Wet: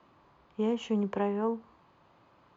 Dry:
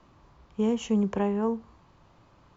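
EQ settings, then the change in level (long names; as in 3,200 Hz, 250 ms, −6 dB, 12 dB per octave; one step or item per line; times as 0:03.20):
high-pass filter 310 Hz 6 dB per octave
high-frequency loss of the air 130 metres
notch filter 5,600 Hz, Q 12
0.0 dB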